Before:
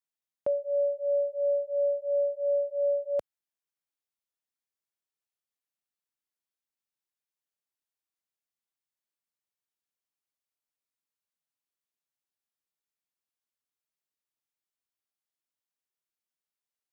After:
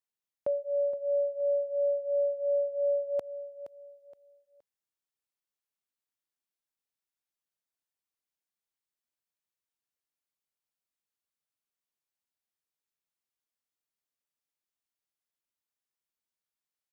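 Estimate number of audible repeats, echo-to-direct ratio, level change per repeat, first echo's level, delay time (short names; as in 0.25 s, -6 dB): 3, -12.0 dB, -10.0 dB, -12.5 dB, 0.47 s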